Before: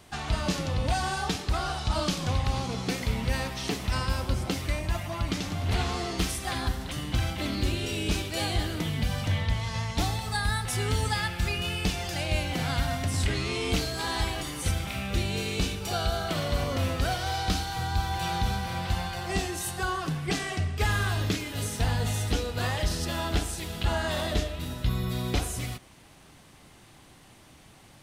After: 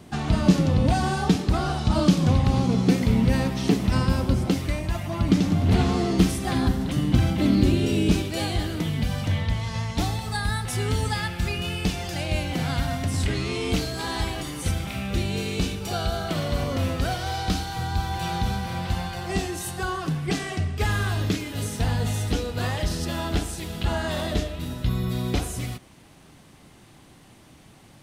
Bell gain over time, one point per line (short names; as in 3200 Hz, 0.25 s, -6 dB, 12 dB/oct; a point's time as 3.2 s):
bell 210 Hz 2.4 oct
4.14 s +14 dB
4.95 s +5 dB
5.31 s +14.5 dB
7.96 s +14.5 dB
8.52 s +5 dB